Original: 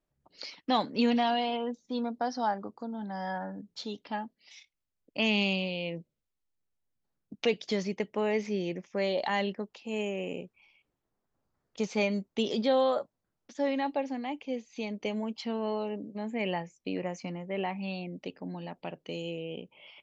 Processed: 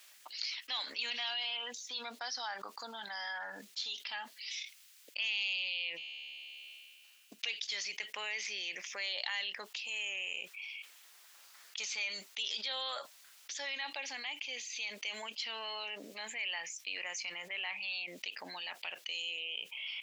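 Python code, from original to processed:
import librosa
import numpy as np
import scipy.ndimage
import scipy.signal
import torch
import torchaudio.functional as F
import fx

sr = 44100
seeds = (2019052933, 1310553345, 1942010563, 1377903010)

y = fx.comb_fb(x, sr, f0_hz=71.0, decay_s=1.9, harmonics='all', damping=0.0, mix_pct=50, at=(5.96, 7.38), fade=0.02)
y = scipy.signal.sosfilt(scipy.signal.cheby1(2, 1.0, 2600.0, 'highpass', fs=sr, output='sos'), y)
y = fx.env_flatten(y, sr, amount_pct=70)
y = F.gain(torch.from_numpy(y), -4.5).numpy()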